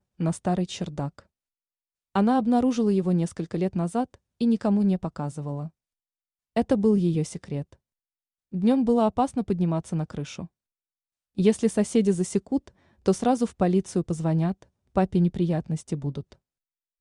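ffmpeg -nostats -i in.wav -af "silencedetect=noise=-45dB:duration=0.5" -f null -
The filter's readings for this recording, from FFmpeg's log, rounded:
silence_start: 1.20
silence_end: 2.15 | silence_duration: 0.96
silence_start: 5.69
silence_end: 6.56 | silence_duration: 0.88
silence_start: 7.74
silence_end: 8.52 | silence_duration: 0.79
silence_start: 10.46
silence_end: 11.37 | silence_duration: 0.91
silence_start: 16.33
silence_end: 17.01 | silence_duration: 0.67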